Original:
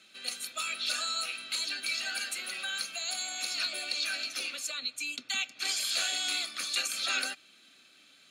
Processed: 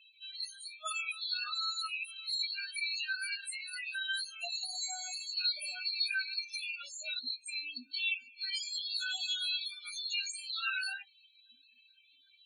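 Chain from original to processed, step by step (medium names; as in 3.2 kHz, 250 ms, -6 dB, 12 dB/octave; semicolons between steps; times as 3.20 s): loudest bins only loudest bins 8; plain phase-vocoder stretch 1.5×; trim +4 dB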